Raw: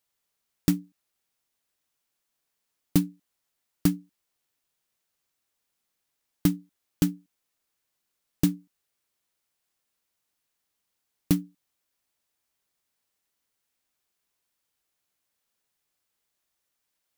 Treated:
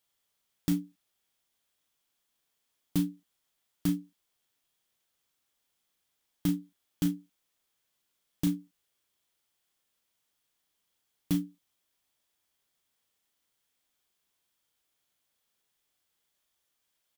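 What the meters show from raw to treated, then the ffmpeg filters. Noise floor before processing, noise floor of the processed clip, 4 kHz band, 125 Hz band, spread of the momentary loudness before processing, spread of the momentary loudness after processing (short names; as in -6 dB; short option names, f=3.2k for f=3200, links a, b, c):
-81 dBFS, -80 dBFS, -5.0 dB, -5.5 dB, 11 LU, 7 LU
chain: -filter_complex "[0:a]equalizer=f=3.3k:w=7.3:g=6.5,alimiter=limit=-17dB:level=0:latency=1:release=49,asplit=2[a][b];[b]adelay=35,volume=-8dB[c];[a][c]amix=inputs=2:normalize=0"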